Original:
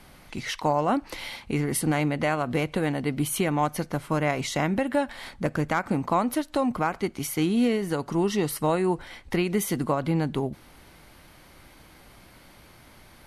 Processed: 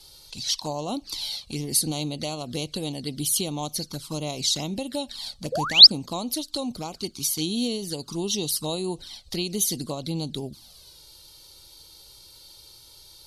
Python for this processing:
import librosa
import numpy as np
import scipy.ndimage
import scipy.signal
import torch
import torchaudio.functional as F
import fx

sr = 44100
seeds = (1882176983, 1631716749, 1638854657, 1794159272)

y = fx.env_flanger(x, sr, rest_ms=2.4, full_db=-21.0)
y = fx.spec_paint(y, sr, seeds[0], shape='rise', start_s=5.52, length_s=0.35, low_hz=460.0, high_hz=5500.0, level_db=-21.0)
y = fx.high_shelf_res(y, sr, hz=2900.0, db=13.5, q=3.0)
y = F.gain(torch.from_numpy(y), -4.5).numpy()